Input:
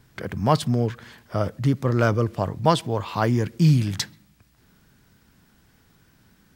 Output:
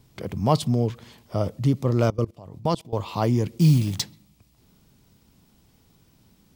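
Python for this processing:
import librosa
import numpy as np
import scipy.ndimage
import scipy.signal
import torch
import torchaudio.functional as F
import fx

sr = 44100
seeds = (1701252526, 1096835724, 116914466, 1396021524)

y = fx.block_float(x, sr, bits=5, at=(3.59, 4.01), fade=0.02)
y = fx.peak_eq(y, sr, hz=1600.0, db=-13.0, octaves=0.65)
y = fx.level_steps(y, sr, step_db=21, at=(2.1, 2.93))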